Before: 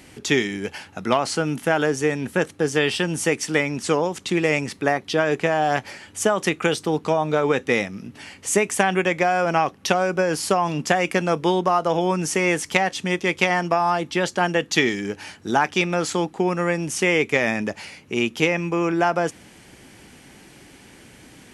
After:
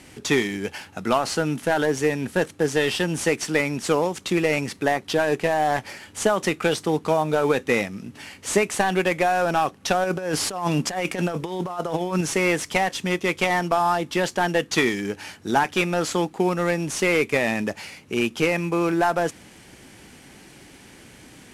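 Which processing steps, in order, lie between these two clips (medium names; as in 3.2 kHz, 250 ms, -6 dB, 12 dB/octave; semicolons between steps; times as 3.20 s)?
CVSD coder 64 kbps; 10.04–12.21 s: compressor with a negative ratio -24 dBFS, ratio -0.5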